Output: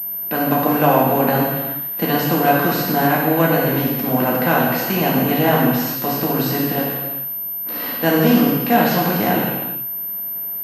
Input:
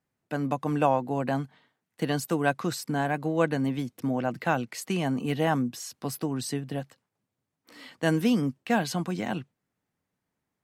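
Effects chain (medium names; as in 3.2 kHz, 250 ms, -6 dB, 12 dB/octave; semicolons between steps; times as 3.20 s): spectral levelling over time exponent 0.6; gated-style reverb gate 450 ms falling, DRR -4 dB; class-D stage that switches slowly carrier 13 kHz; trim +2 dB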